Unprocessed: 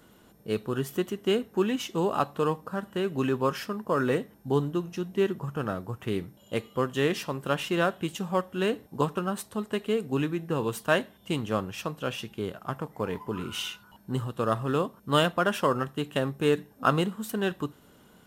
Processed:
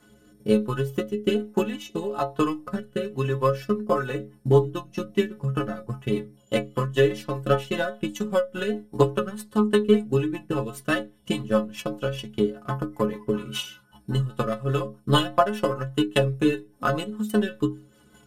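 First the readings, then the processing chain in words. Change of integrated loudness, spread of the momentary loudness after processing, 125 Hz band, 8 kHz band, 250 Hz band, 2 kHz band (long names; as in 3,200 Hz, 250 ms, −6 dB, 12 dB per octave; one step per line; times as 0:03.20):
+3.5 dB, 9 LU, +5.5 dB, +0.5 dB, +4.0 dB, +1.0 dB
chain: in parallel at −1.5 dB: downward compressor, threshold −35 dBFS, peak gain reduction 17 dB
on the sum: transient designer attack +11 dB, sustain −5 dB
stiff-string resonator 63 Hz, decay 0.51 s, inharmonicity 0.03
rotating-speaker cabinet horn 1.1 Hz, later 5 Hz, at 0:03.64
level +8 dB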